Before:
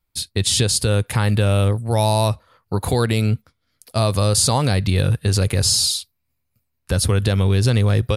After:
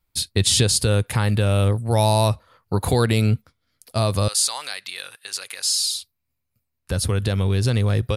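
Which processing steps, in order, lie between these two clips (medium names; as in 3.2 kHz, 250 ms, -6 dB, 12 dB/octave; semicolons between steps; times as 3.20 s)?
gain riding 2 s; 4.28–5.92 s: high-pass 1.4 kHz 12 dB/octave; trim -2 dB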